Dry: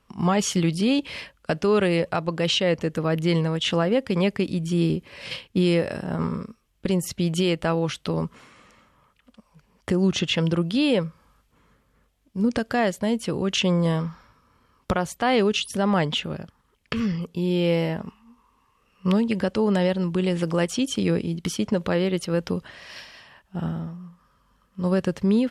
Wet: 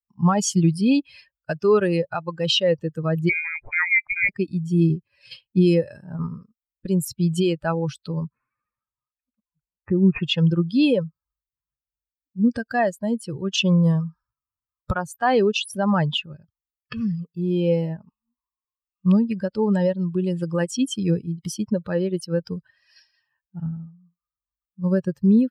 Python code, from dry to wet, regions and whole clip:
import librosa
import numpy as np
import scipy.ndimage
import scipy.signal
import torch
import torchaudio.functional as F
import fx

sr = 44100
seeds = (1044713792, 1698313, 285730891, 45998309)

y = fx.chain(x, sr, fx.highpass(hz=300.0, slope=12),
    fx.freq_invert(carrier_hz=2600),
    fx.band_squash(depth_pct=40), at=(3.29, 4.29))
y = fx.chain(y, sr, fx.resample_bad(factor=8, down='none', up='filtered'),
    fx.air_absorb(metres=72.0), at=(8.24, 10.23))
y = fx.bin_expand(y, sr, power=2.0)
y = fx.dynamic_eq(y, sr, hz=140.0, q=1.9, threshold_db=-41.0, ratio=4.0, max_db=4)
y = F.gain(torch.from_numpy(y), 5.5).numpy()